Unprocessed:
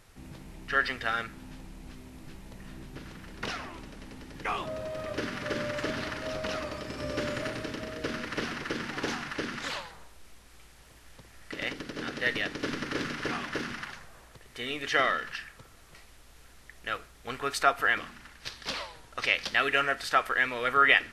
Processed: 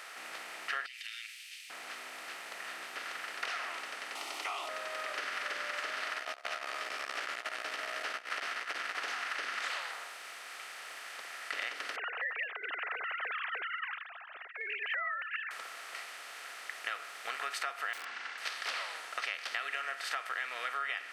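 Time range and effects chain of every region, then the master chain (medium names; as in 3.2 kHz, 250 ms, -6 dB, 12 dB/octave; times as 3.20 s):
0.86–1.70 s: steep high-pass 2.4 kHz 48 dB/octave + compression 3:1, threshold -50 dBFS
4.15–4.69 s: high-pass 250 Hz 24 dB/octave + static phaser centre 330 Hz, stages 8 + level flattener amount 50%
6.14–8.95 s: doubling 16 ms -2 dB + transformer saturation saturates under 650 Hz
11.96–15.51 s: formants replaced by sine waves + dynamic bell 770 Hz, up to -7 dB, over -43 dBFS, Q 1.1
17.93–18.38 s: low-pass 5.5 kHz 24 dB/octave + integer overflow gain 30.5 dB + comb of notches 620 Hz
whole clip: spectral levelling over time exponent 0.6; compression 10:1, threshold -28 dBFS; high-pass 780 Hz 12 dB/octave; trim -4 dB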